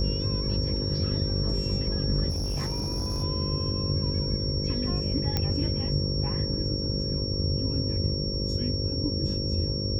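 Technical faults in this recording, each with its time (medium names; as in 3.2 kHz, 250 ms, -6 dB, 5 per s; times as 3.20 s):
buzz 50 Hz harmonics 11 -33 dBFS
whine 5.5 kHz -32 dBFS
2.29–3.24 s: clipped -25.5 dBFS
5.37 s: pop -12 dBFS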